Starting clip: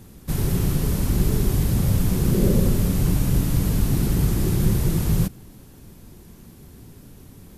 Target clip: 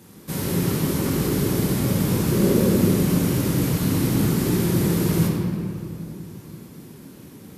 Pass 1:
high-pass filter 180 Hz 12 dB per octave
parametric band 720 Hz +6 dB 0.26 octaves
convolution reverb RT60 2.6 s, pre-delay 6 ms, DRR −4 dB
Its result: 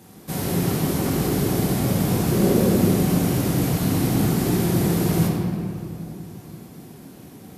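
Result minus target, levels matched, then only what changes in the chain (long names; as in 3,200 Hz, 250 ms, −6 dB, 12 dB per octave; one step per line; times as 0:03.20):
1,000 Hz band +3.5 dB
change: parametric band 720 Hz −5.5 dB 0.26 octaves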